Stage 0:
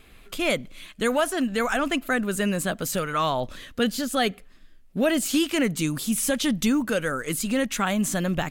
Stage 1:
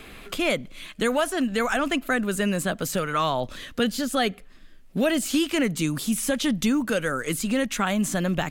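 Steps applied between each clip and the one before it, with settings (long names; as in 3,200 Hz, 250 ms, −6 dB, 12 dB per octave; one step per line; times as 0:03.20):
high-shelf EQ 10,000 Hz −3.5 dB
multiband upward and downward compressor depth 40%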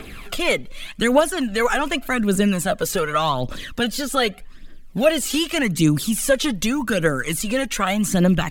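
phase shifter 0.85 Hz, delay 2.5 ms, feedback 57%
level +3 dB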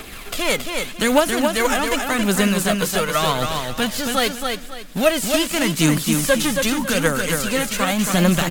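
spectral envelope flattened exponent 0.6
on a send: repeating echo 274 ms, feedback 29%, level −5 dB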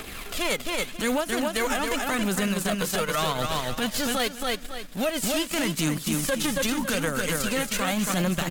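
transient designer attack −11 dB, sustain −7 dB
downward compressor, threshold −22 dBFS, peak gain reduction 8.5 dB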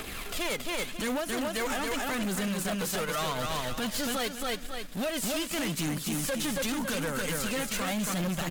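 soft clipping −27 dBFS, distortion −10 dB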